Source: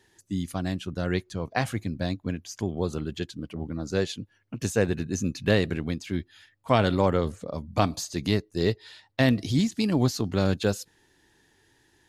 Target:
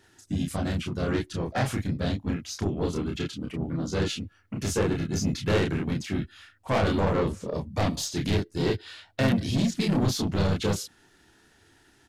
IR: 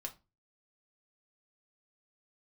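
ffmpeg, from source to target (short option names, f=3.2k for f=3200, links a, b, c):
-filter_complex "[0:a]asplit=2[a][b];[b]adelay=30,volume=-2.5dB[c];[a][c]amix=inputs=2:normalize=0,aeval=exprs='(tanh(11.2*val(0)+0.05)-tanh(0.05))/11.2':c=same,asplit=3[d][e][f];[e]asetrate=35002,aresample=44100,atempo=1.25992,volume=-5dB[g];[f]asetrate=37084,aresample=44100,atempo=1.18921,volume=-8dB[h];[d][g][h]amix=inputs=3:normalize=0"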